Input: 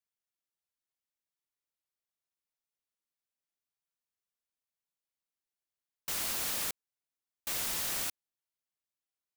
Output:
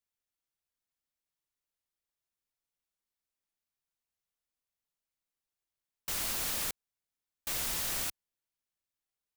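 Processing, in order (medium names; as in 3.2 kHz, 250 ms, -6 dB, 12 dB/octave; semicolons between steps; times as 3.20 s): bass shelf 82 Hz +10 dB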